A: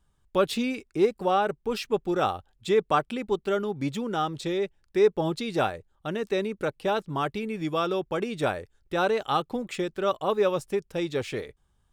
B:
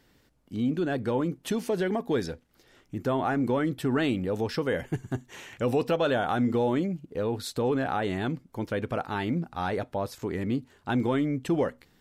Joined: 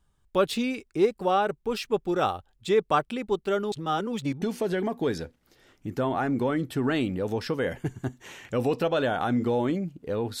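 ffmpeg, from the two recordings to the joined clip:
-filter_complex "[0:a]apad=whole_dur=10.4,atrim=end=10.4,asplit=2[a][b];[a]atrim=end=3.722[c];[b]atrim=start=3.718:end=4.422,asetpts=PTS-STARTPTS,areverse[d];[1:a]atrim=start=1.498:end=7.48[e];[c][d]acrossfade=d=0.004:c1=hsin:c2=hsin[f];[f][e]acrossfade=d=0.004:c1=hsin:c2=hsin"

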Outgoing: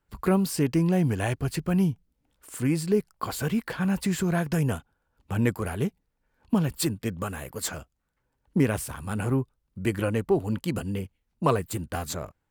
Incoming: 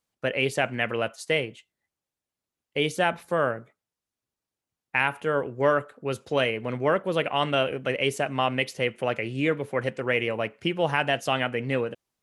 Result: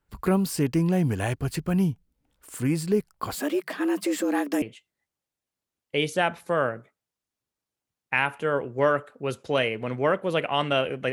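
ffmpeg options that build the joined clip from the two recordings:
-filter_complex "[0:a]asettb=1/sr,asplit=3[a][b][c];[a]atrim=end=3.354[d];[b]atrim=start=3.35:end=4.62,asetpts=PTS-STARTPTS,afade=t=in:d=0.004:c=qsin,afade=t=out:st=1.266:d=0.004:c=qsin,afreqshift=140[e];[c]atrim=start=4.616[f];[d][e]acrossfade=d=0.004:c1=hsin:c2=qsin[g];[g][f]acrossfade=d=0.004:c1=qsin:c2=hsin,apad=whole_dur=11.12,atrim=end=11.12,atrim=end=4.622[h];[1:a]atrim=start=1.438:end=7.94[i];[h][i]acrossfade=d=0.004:c1=hsin:c2=hsin"

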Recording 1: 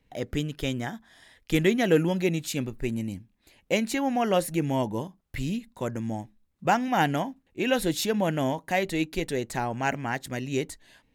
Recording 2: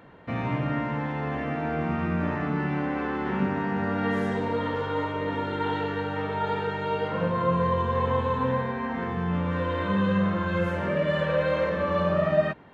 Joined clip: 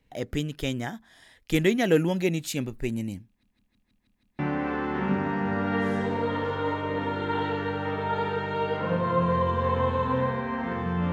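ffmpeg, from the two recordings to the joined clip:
-filter_complex "[0:a]apad=whole_dur=11.12,atrim=end=11.12,asplit=7[a][b][c][d][e][f][g];[a]atrim=end=3.432[h];[b]atrim=start=3.268:end=3.432[i];[c]atrim=start=3.268:end=3.432[j];[d]atrim=start=3.268:end=3.432[k];[e]atrim=start=3.268:end=3.432[l];[f]atrim=start=3.268:end=3.432[m];[g]atrim=start=3.268:end=3.432[n];[1:a]atrim=start=2.698:end=9.43[o];[h][i]acrossfade=d=0.004:c1=hsin:c2=hsin[p];[p][j]acrossfade=d=0.004:c1=hsin:c2=hsin[q];[q][k]acrossfade=d=0.004:c1=hsin:c2=hsin[r];[r][l]acrossfade=d=0.004:c1=hsin:c2=hsin[s];[s][m]acrossfade=d=0.004:c1=hsin:c2=hsin[t];[t][n]acrossfade=d=0.004:c1=hsin:c2=hsin[u];[u][o]acrossfade=d=0.004:c1=hsin:c2=hsin"

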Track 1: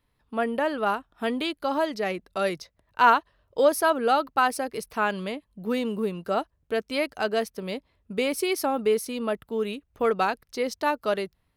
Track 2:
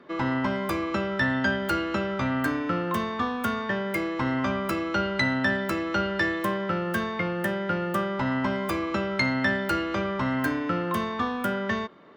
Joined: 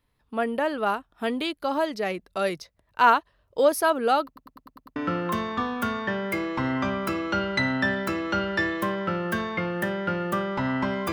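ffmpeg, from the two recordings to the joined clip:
-filter_complex "[0:a]apad=whole_dur=11.12,atrim=end=11.12,asplit=7[a][b][c][d][e][f][g];[a]atrim=end=4.362[h];[b]atrim=start=4.258:end=4.362[i];[c]atrim=start=4.258:end=4.362[j];[d]atrim=start=4.258:end=4.362[k];[e]atrim=start=4.258:end=4.362[l];[f]atrim=start=4.258:end=4.362[m];[g]atrim=start=4.258:end=4.362[n];[1:a]atrim=start=2.578:end=8.74[o];[h][i]acrossfade=d=0.004:c1=hsin:c2=hsin[p];[p][j]acrossfade=d=0.004:c1=hsin:c2=hsin[q];[q][k]acrossfade=d=0.004:c1=hsin:c2=hsin[r];[r][l]acrossfade=d=0.004:c1=hsin:c2=hsin[s];[s][m]acrossfade=d=0.004:c1=hsin:c2=hsin[t];[t][n]acrossfade=d=0.004:c1=hsin:c2=hsin[u];[u][o]acrossfade=d=0.004:c1=hsin:c2=hsin"

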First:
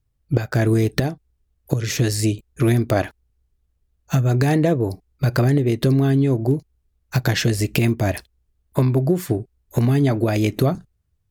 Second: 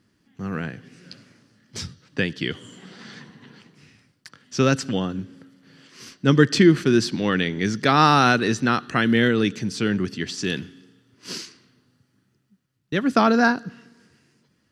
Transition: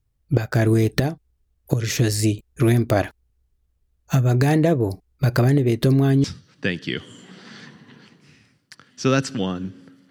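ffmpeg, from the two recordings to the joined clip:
-filter_complex "[1:a]asplit=2[a][b];[0:a]apad=whole_dur=10.1,atrim=end=10.1,atrim=end=6.242[c];[b]atrim=start=1.778:end=5.64[d];[a]atrim=start=1.21:end=1.78,asetpts=PTS-STARTPTS,volume=-17.5dB,afade=t=in:d=0.004:c=hsin,afade=t=out:st=0.566:d=0.004:c=hsin,adelay=5670[e];[c][d]acrossfade=d=0.004:c1=hsin:c2=hsin[f];[f][e]amix=inputs=2:normalize=0"

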